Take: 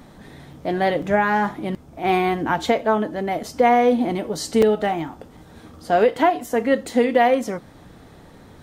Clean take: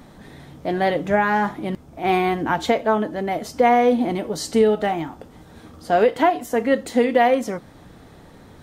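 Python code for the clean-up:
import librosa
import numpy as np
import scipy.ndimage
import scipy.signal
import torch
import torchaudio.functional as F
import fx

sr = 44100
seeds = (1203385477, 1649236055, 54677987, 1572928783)

y = fx.fix_interpolate(x, sr, at_s=(0.53, 1.02, 3.43, 4.62, 5.37), length_ms=4.1)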